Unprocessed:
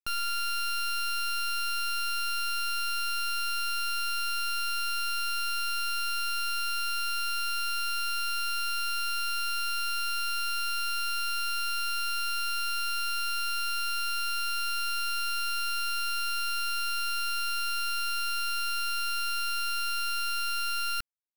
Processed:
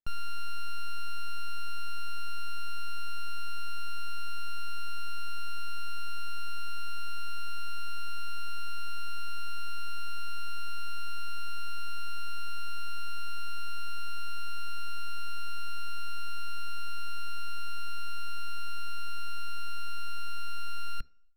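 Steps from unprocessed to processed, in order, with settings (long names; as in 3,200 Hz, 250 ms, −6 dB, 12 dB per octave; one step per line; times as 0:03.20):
spectral tilt −3 dB per octave
on a send: convolution reverb RT60 0.55 s, pre-delay 3 ms, DRR 17 dB
on the sum: level −6.5 dB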